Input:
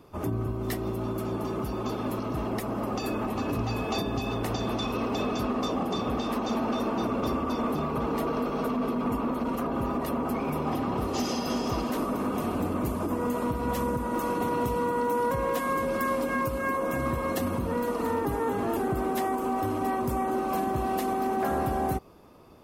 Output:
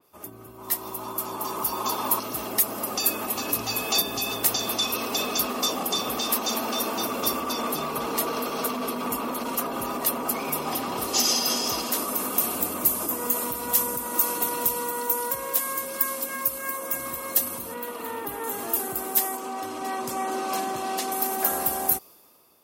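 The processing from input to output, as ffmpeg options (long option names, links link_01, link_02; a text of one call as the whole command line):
ffmpeg -i in.wav -filter_complex "[0:a]asettb=1/sr,asplit=3[link_01][link_02][link_03];[link_01]atrim=end=0.584[link_04];[link_02]atrim=start=0.58:end=2.2,asetpts=PTS-STARTPTS,afade=type=in:duration=0.004:curve=qsin,afade=type=out:start_time=1.616:duration=0.004:curve=qsin,equalizer=frequency=980:width=2.8:gain=13[link_05];[link_03]atrim=start=2.196[link_06];[link_04][link_05]acrossfade=duration=0.004:curve1=hsin:curve2=qsin[link_07];[link_07][link_06]acrossfade=duration=0.004:curve1=qsin:curve2=hsin,asettb=1/sr,asplit=3[link_08][link_09][link_10];[link_08]atrim=end=7.404[link_11];[link_09]atrim=start=7.4:end=12.08,asetpts=PTS-STARTPTS,afade=type=in:duration=0.004:curve=qsin,afade=type=out:start_time=4.676:duration=0.004:curve=qsin,highshelf=frequency=12000:gain=-10.5[link_12];[link_10]atrim=start=12.076[link_13];[link_11][link_12]acrossfade=duration=0.004:curve1=hsin:curve2=qsin[link_14];[link_14][link_13]acrossfade=duration=0.004:curve1=qsin:curve2=hsin,asettb=1/sr,asplit=3[link_15][link_16][link_17];[link_15]atrim=end=17.744[link_18];[link_16]atrim=start=17.74:end=18.44,asetpts=PTS-STARTPTS,afade=type=in:duration=0.004:curve=qsin,afade=type=out:start_time=0.696:duration=0.004:curve=qsin,highshelf=frequency=4200:width_type=q:width=1.5:gain=-7.5[link_19];[link_17]atrim=start=18.436[link_20];[link_18][link_19]acrossfade=duration=0.004:curve1=hsin:curve2=qsin[link_21];[link_21][link_20]acrossfade=duration=0.004:curve1=qsin:curve2=hsin,asettb=1/sr,asplit=3[link_22][link_23][link_24];[link_22]atrim=end=19.374[link_25];[link_23]atrim=start=19.37:end=21.12,asetpts=PTS-STARTPTS,afade=type=in:duration=0.004:curve=qsin,afade=type=out:start_time=1.746:duration=0.004:curve=qsin,highpass=120,lowpass=5600[link_26];[link_24]atrim=start=21.116[link_27];[link_25][link_26]acrossfade=duration=0.004:curve1=hsin:curve2=qsin[link_28];[link_28][link_27]acrossfade=duration=0.004:curve1=qsin:curve2=hsin,aemphasis=mode=production:type=riaa,dynaudnorm=framelen=170:gausssize=9:maxgain=11.5dB,adynamicequalizer=threshold=0.02:dfrequency=3200:dqfactor=0.7:tfrequency=3200:tqfactor=0.7:attack=5:release=100:ratio=0.375:range=3:mode=boostabove:tftype=highshelf,volume=-9dB" out.wav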